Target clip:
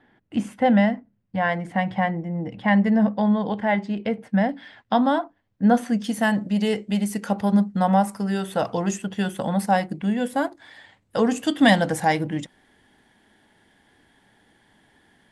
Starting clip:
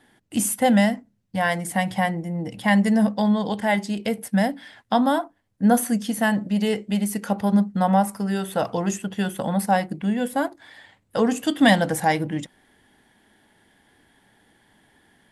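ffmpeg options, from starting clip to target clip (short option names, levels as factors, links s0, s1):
-af "asetnsamples=n=441:p=0,asendcmd='4.49 lowpass f 4100;6.04 lowpass f 9000',lowpass=2400"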